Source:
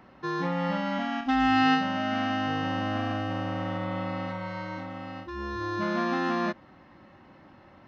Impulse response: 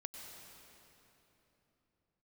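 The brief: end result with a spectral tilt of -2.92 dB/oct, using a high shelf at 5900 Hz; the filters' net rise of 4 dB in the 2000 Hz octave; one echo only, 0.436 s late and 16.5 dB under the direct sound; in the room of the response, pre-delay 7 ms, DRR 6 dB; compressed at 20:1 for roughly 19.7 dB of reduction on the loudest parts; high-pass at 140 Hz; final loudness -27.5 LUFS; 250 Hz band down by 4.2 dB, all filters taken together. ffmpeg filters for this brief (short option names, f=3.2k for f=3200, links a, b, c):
-filter_complex "[0:a]highpass=140,equalizer=f=250:t=o:g=-4.5,equalizer=f=2k:t=o:g=5.5,highshelf=f=5.9k:g=-7.5,acompressor=threshold=-38dB:ratio=20,aecho=1:1:436:0.15,asplit=2[a][b];[1:a]atrim=start_sample=2205,adelay=7[c];[b][c]afir=irnorm=-1:irlink=0,volume=-3dB[d];[a][d]amix=inputs=2:normalize=0,volume=13.5dB"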